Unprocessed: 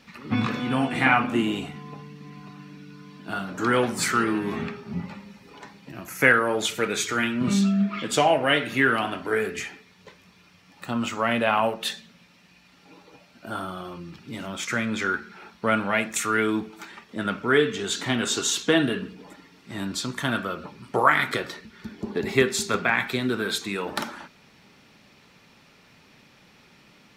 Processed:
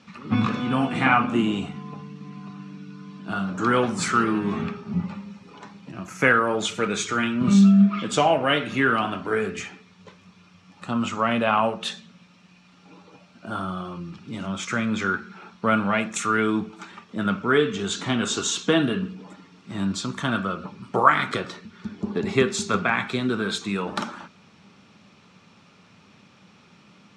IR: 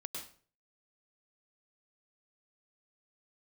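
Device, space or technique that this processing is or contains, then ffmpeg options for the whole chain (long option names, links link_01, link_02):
car door speaker: -af "highpass=83,equalizer=frequency=96:width_type=q:width=4:gain=8,equalizer=frequency=190:width_type=q:width=4:gain=8,equalizer=frequency=1200:width_type=q:width=4:gain=5,equalizer=frequency=1900:width_type=q:width=4:gain=-5,equalizer=frequency=4600:width_type=q:width=4:gain=-3,lowpass=frequency=8200:width=0.5412,lowpass=frequency=8200:width=1.3066"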